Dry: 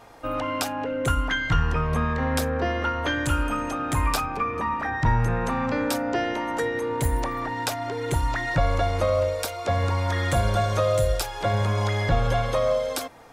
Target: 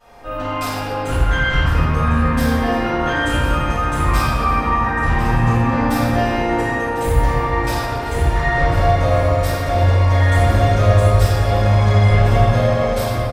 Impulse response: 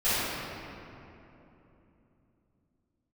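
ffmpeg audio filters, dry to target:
-filter_complex "[0:a]asoftclip=type=hard:threshold=0.133,aecho=1:1:1051|2102|3153|4204|5255|6306:0.237|0.128|0.0691|0.0373|0.0202|0.0109[s0];[1:a]atrim=start_sample=2205[s1];[s0][s1]afir=irnorm=-1:irlink=0,volume=0.398"

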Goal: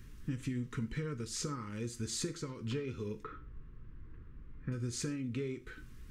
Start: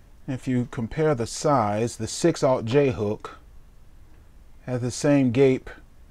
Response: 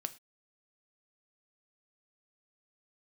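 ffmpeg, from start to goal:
-filter_complex "[0:a]asettb=1/sr,asplit=3[s0][s1][s2];[s0]atrim=end=3.234[s3];[s1]atrim=start=3.23:end=4.72,asetpts=PTS-STARTPTS,afade=t=in:d=0.004:c=qsin,afade=t=out:st=1.486:d=0.004:c=qsin,lowpass=1500[s4];[s2]atrim=start=4.716[s5];[s3][s4]acrossfade=d=0.004:c1=hsin:c2=qsin[s6];[s6][s5]acrossfade=d=0.004:c1=qsin:c2=hsin,acompressor=threshold=0.02:ratio=10,asuperstop=centerf=700:order=4:qfactor=0.95[s7];[1:a]atrim=start_sample=2205[s8];[s7][s8]afir=irnorm=-1:irlink=0,volume=1.12"

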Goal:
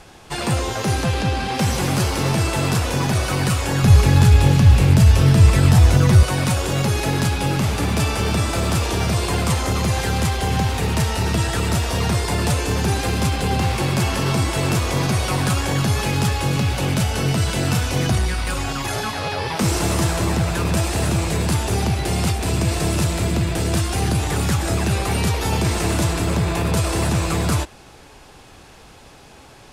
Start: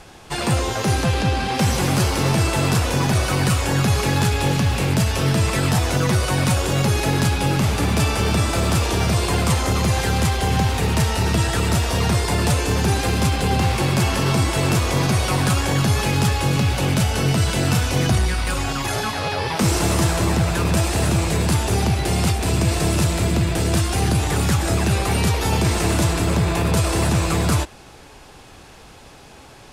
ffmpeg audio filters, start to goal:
-filter_complex "[0:a]asettb=1/sr,asplit=3[s0][s1][s2];[s0]atrim=end=3.834[s3];[s1]atrim=start=3.83:end=6.23,asetpts=PTS-STARTPTS,afade=t=in:d=0.004:c=qsin,afade=t=out:st=2.396:d=0.004:c=qsin,equalizer=f=68:t=o:w=2.1:g=13[s4];[s2]atrim=start=6.226[s5];[s3][s4]acrossfade=d=0.004:c1=hsin:c2=qsin[s6];[s6][s5]acrossfade=d=0.004:c1=qsin:c2=hsin,volume=0.891"

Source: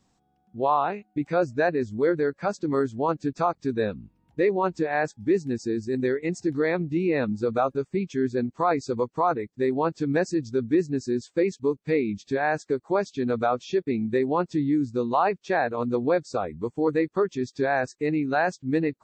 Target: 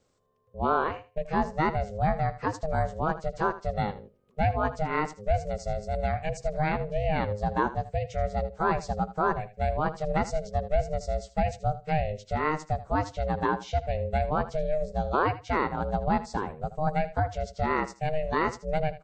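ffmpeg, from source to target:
-af "aeval=exprs='val(0)*sin(2*PI*310*n/s)':c=same,aecho=1:1:79|158:0.178|0.0285"

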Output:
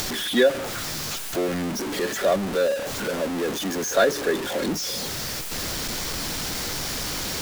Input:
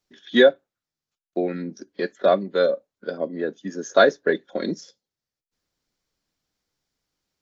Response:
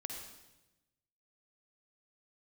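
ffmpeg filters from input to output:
-af "aeval=exprs='val(0)+0.5*0.126*sgn(val(0))':c=same,acompressor=mode=upward:threshold=0.0708:ratio=2.5,volume=0.531"

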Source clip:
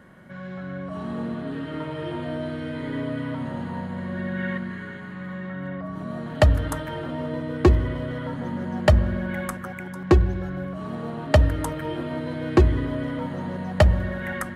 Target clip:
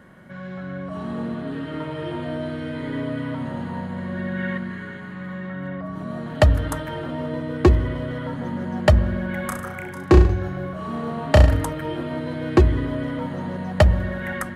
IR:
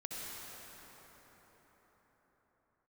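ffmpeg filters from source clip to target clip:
-filter_complex "[0:a]asettb=1/sr,asplit=3[s0][s1][s2];[s0]atrim=end=9.414[s3];[s1]atrim=start=9.41:end=11.65,asetpts=PTS-STARTPTS,afade=t=in:d=0.004:c=qsin,afade=t=out:st=2.236:d=0.004:c=qsin,aecho=1:1:30|63|99.3|139.2|183.2:0.631|0.398|0.251|0.158|0.1,atrim=end_sample=98784[s4];[s2]atrim=start=11.646[s5];[s3][s4]acrossfade=d=0.004:c1=hsin:c2=qsin[s6];[s6][s5]acrossfade=d=0.004:c1=qsin:c2=hsin,volume=1.19"

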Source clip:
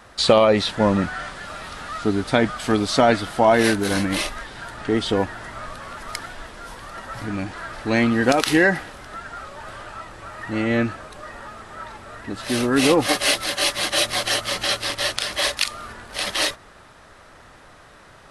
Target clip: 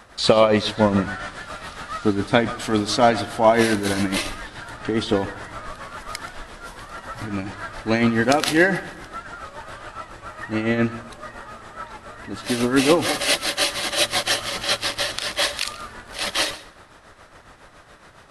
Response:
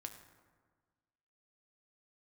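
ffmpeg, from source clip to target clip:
-filter_complex "[0:a]tremolo=f=7.2:d=0.56,asplit=2[s0][s1];[1:a]atrim=start_sample=2205,adelay=129[s2];[s1][s2]afir=irnorm=-1:irlink=0,volume=0.251[s3];[s0][s3]amix=inputs=2:normalize=0,volume=1.26"

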